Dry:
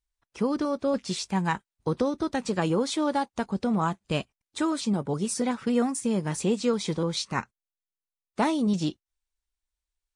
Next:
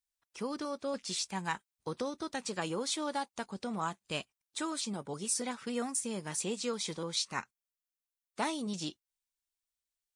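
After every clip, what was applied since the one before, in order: tilt +2.5 dB/oct; gain -7.5 dB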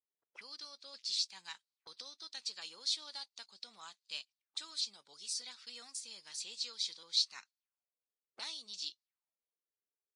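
auto-wah 420–4400 Hz, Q 4, up, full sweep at -42 dBFS; gain +6 dB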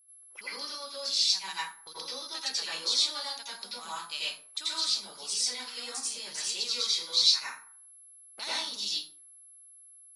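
whine 11000 Hz -65 dBFS; reverb RT60 0.50 s, pre-delay 77 ms, DRR -8.5 dB; gain +5 dB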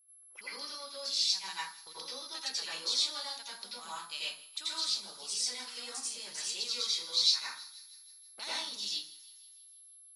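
thin delay 0.161 s, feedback 60%, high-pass 2300 Hz, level -18 dB; gain -4 dB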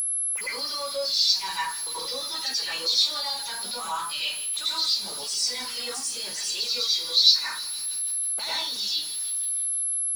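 zero-crossing step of -29.5 dBFS; upward compressor, threshold -36 dBFS; spectral expander 1.5:1; gain +8 dB

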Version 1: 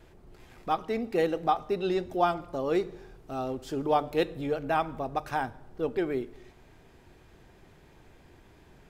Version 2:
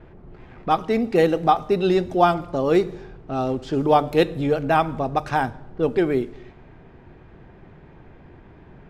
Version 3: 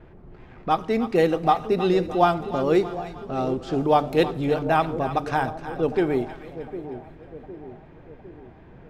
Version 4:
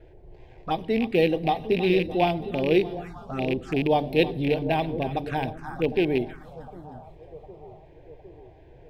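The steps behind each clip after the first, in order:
bell 160 Hz +4.5 dB 1.3 oct; low-pass opened by the level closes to 1800 Hz, open at -25 dBFS; gain +8 dB
split-band echo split 730 Hz, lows 0.757 s, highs 0.311 s, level -12 dB; gain -2 dB
rattling part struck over -26 dBFS, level -18 dBFS; envelope phaser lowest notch 180 Hz, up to 1300 Hz, full sweep at -21.5 dBFS

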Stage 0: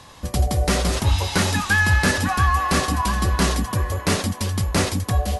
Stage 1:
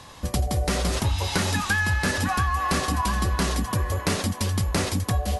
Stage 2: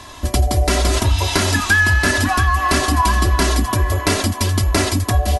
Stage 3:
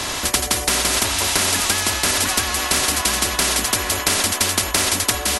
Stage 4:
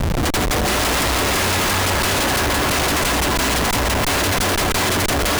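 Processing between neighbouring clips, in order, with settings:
compressor, threshold -20 dBFS, peak gain reduction 7.5 dB
comb 3 ms, depth 66%; gain +6.5 dB
spectral compressor 4:1; gain +1.5 dB
regenerating reverse delay 0.169 s, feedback 70%, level -5.5 dB; Schmitt trigger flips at -17.5 dBFS

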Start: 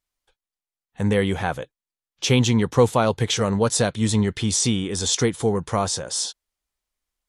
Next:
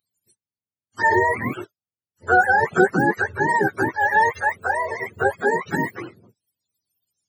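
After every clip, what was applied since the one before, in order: spectrum mirrored in octaves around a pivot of 430 Hz; RIAA curve recording; gain +5.5 dB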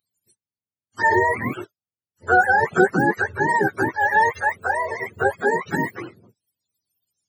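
nothing audible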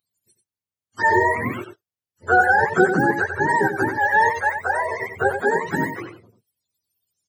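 echo 91 ms -8 dB; reverb, pre-delay 70 ms, DRR 33.5 dB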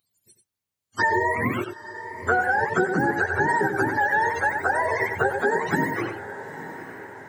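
compressor, threshold -25 dBFS, peak gain reduction 13.5 dB; diffused feedback echo 0.903 s, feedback 55%, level -14 dB; gain +5.5 dB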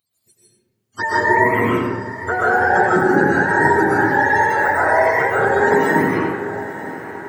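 digital reverb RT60 1.5 s, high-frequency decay 0.35×, pre-delay 90 ms, DRR -8 dB; gain -1 dB

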